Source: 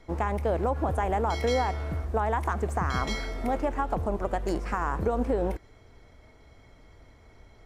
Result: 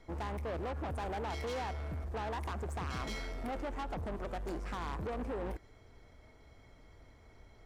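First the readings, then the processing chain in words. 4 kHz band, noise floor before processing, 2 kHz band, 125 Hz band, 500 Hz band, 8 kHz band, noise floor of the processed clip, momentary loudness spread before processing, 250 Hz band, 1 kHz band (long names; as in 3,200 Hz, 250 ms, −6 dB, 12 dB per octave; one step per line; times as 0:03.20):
−7.5 dB, −55 dBFS, −9.0 dB, −9.5 dB, −11.5 dB, −8.5 dB, −60 dBFS, 4 LU, −10.5 dB, −11.5 dB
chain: soft clipping −30.5 dBFS, distortion −8 dB
level −4.5 dB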